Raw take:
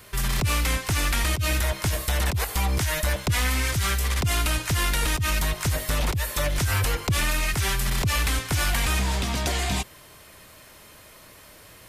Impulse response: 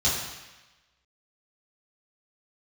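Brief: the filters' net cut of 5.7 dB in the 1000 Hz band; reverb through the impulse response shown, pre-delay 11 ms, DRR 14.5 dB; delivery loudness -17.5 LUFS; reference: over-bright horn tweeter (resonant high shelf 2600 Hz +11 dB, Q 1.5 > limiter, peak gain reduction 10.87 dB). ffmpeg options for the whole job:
-filter_complex "[0:a]equalizer=f=1k:t=o:g=-5.5,asplit=2[a][b];[1:a]atrim=start_sample=2205,adelay=11[c];[b][c]afir=irnorm=-1:irlink=0,volume=-27dB[d];[a][d]amix=inputs=2:normalize=0,highshelf=f=2.6k:t=q:w=1.5:g=11,volume=3.5dB,alimiter=limit=-9dB:level=0:latency=1"

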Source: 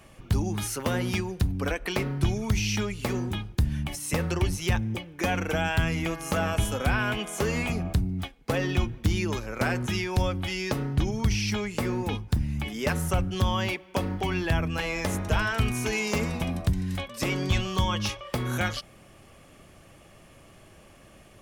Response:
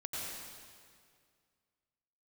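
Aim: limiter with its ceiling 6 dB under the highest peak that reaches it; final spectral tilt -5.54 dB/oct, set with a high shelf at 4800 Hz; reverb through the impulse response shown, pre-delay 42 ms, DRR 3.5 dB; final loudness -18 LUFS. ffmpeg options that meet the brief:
-filter_complex "[0:a]highshelf=f=4.8k:g=-4.5,alimiter=limit=-20dB:level=0:latency=1,asplit=2[a][b];[1:a]atrim=start_sample=2205,adelay=42[c];[b][c]afir=irnorm=-1:irlink=0,volume=-5.5dB[d];[a][d]amix=inputs=2:normalize=0,volume=11dB"

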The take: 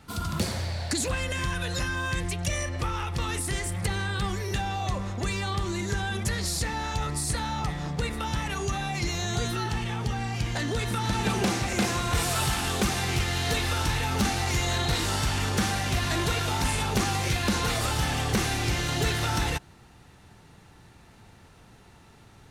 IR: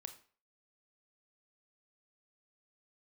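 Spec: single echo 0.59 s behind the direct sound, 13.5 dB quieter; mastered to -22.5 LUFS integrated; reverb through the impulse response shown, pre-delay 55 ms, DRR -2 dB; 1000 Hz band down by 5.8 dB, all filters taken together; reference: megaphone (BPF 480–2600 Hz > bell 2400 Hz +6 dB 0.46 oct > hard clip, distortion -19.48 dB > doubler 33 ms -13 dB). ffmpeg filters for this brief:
-filter_complex "[0:a]equalizer=f=1k:t=o:g=-7.5,aecho=1:1:590:0.211,asplit=2[a][b];[1:a]atrim=start_sample=2205,adelay=55[c];[b][c]afir=irnorm=-1:irlink=0,volume=7dB[d];[a][d]amix=inputs=2:normalize=0,highpass=480,lowpass=2.6k,equalizer=f=2.4k:t=o:w=0.46:g=6,asoftclip=type=hard:threshold=-23.5dB,asplit=2[e][f];[f]adelay=33,volume=-13dB[g];[e][g]amix=inputs=2:normalize=0,volume=7dB"

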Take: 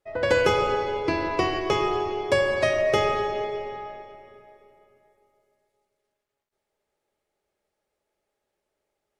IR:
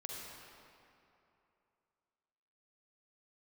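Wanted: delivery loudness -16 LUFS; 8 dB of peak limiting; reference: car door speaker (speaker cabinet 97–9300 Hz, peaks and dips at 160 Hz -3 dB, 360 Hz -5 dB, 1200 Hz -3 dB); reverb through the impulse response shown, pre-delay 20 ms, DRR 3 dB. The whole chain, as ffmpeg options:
-filter_complex "[0:a]alimiter=limit=-15dB:level=0:latency=1,asplit=2[a][b];[1:a]atrim=start_sample=2205,adelay=20[c];[b][c]afir=irnorm=-1:irlink=0,volume=-2dB[d];[a][d]amix=inputs=2:normalize=0,highpass=97,equalizer=f=160:t=q:w=4:g=-3,equalizer=f=360:t=q:w=4:g=-5,equalizer=f=1.2k:t=q:w=4:g=-3,lowpass=f=9.3k:w=0.5412,lowpass=f=9.3k:w=1.3066,volume=9dB"

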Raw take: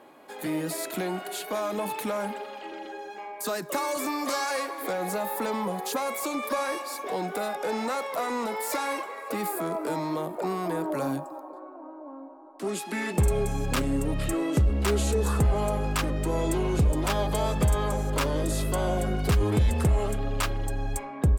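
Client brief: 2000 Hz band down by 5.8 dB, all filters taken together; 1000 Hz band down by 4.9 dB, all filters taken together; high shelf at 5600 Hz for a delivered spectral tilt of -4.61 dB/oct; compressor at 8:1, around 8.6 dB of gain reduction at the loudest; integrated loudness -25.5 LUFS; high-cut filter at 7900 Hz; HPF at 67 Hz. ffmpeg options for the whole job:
-af "highpass=67,lowpass=7.9k,equalizer=f=1k:t=o:g=-5,equalizer=f=2k:t=o:g=-7,highshelf=f=5.6k:g=8.5,acompressor=threshold=-28dB:ratio=8,volume=8dB"

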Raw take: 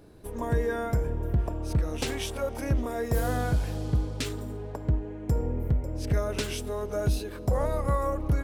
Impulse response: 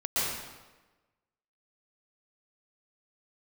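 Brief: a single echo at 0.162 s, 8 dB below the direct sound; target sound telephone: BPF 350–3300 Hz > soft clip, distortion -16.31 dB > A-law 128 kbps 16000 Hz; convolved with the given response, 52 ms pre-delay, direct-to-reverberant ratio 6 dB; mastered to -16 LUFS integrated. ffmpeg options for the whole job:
-filter_complex "[0:a]aecho=1:1:162:0.398,asplit=2[a][b];[1:a]atrim=start_sample=2205,adelay=52[c];[b][c]afir=irnorm=-1:irlink=0,volume=-16dB[d];[a][d]amix=inputs=2:normalize=0,highpass=350,lowpass=3.3k,asoftclip=threshold=-25.5dB,volume=19dB" -ar 16000 -c:a pcm_alaw

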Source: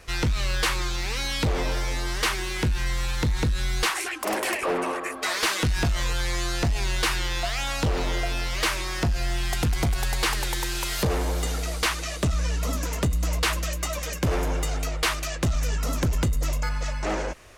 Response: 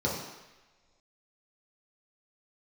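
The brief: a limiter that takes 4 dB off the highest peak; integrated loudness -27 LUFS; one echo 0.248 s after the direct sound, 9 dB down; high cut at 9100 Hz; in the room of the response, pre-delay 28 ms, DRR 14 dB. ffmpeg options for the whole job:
-filter_complex "[0:a]lowpass=9.1k,alimiter=limit=-21.5dB:level=0:latency=1,aecho=1:1:248:0.355,asplit=2[a][b];[1:a]atrim=start_sample=2205,adelay=28[c];[b][c]afir=irnorm=-1:irlink=0,volume=-23.5dB[d];[a][d]amix=inputs=2:normalize=0,volume=1.5dB"

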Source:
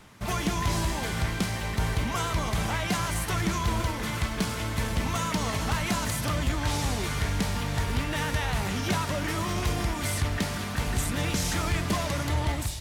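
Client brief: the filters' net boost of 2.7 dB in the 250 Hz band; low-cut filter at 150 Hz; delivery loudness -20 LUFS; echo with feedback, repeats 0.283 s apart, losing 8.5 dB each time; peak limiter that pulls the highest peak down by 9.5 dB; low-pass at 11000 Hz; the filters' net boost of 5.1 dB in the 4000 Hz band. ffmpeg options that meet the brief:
-af "highpass=150,lowpass=11k,equalizer=f=250:t=o:g=5,equalizer=f=4k:t=o:g=6.5,alimiter=limit=-21dB:level=0:latency=1,aecho=1:1:283|566|849|1132:0.376|0.143|0.0543|0.0206,volume=9.5dB"

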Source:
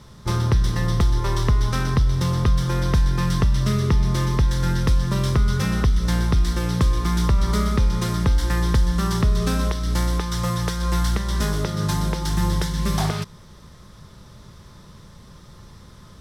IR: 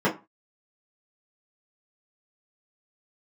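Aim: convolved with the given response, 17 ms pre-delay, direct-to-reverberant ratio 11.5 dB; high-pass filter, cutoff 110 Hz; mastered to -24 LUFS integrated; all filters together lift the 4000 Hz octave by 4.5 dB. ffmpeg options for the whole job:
-filter_complex "[0:a]highpass=110,equalizer=f=4k:t=o:g=5.5,asplit=2[a][b];[1:a]atrim=start_sample=2205,adelay=17[c];[b][c]afir=irnorm=-1:irlink=0,volume=-27dB[d];[a][d]amix=inputs=2:normalize=0,volume=-1dB"

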